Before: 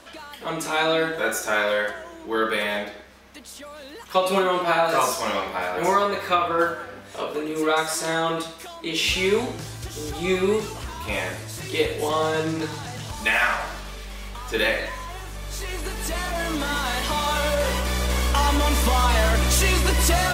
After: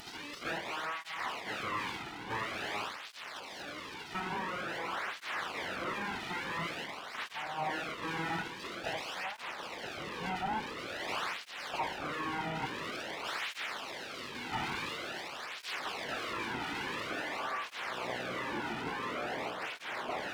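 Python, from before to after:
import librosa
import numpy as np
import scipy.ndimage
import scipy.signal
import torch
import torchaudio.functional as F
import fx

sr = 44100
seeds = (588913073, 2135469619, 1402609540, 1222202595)

p1 = fx.delta_mod(x, sr, bps=16000, step_db=-36.0)
p2 = fx.highpass(p1, sr, hz=46.0, slope=6)
p3 = fx.tilt_eq(p2, sr, slope=1.5)
p4 = fx.rider(p3, sr, range_db=3, speed_s=0.5)
p5 = fx.peak_eq(p4, sr, hz=78.0, db=-6.5, octaves=0.77)
p6 = p5 + fx.echo_diffused(p5, sr, ms=547, feedback_pct=75, wet_db=-14.5, dry=0)
p7 = np.abs(p6)
y = fx.flanger_cancel(p7, sr, hz=0.48, depth_ms=1.9)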